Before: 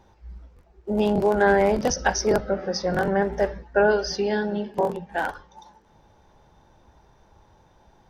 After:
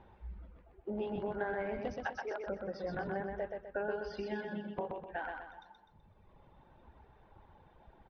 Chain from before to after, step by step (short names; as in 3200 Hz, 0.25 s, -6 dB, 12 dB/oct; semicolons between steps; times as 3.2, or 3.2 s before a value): 1.96–2.46 HPF 330 Hz -> 760 Hz 12 dB/oct; reverb removal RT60 1.7 s; LPF 3200 Hz 24 dB/oct; compressor 3:1, threshold -38 dBFS, peak gain reduction 16.5 dB; feedback echo 0.126 s, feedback 41%, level -4 dB; gain -2.5 dB